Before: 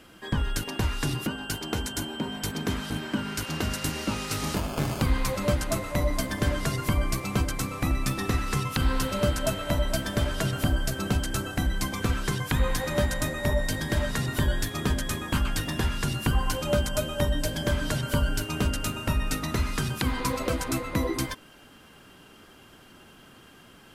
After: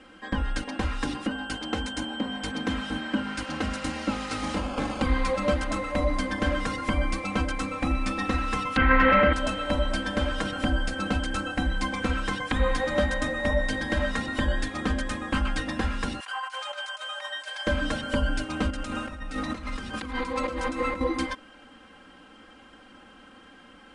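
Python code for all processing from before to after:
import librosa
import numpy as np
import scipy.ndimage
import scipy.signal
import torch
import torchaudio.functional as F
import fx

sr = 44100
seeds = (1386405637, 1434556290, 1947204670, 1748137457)

y = fx.chain(x, sr, fx.lowpass_res(hz=2000.0, q=4.3),
    fx.env_flatten(amount_pct=70), at=(8.77, 9.33))
y = fx.chain(y, sr, fx.highpass(hz=860.0, slope=24),
    fx.over_compress(threshold_db=-36.0, ratio=-0.5), at=(16.2, 17.67))
y = fx.chain(y, sr, fx.over_compress(threshold_db=-33.0, ratio=-1.0),
    fx.echo_feedback(ms=109, feedback_pct=45, wet_db=-14.5), at=(18.7, 21.01))
y = scipy.signal.sosfilt(scipy.signal.butter(16, 10000.0, 'lowpass', fs=sr, output='sos'), y)
y = fx.bass_treble(y, sr, bass_db=-4, treble_db=-10)
y = y + 0.84 * np.pad(y, (int(3.8 * sr / 1000.0), 0))[:len(y)]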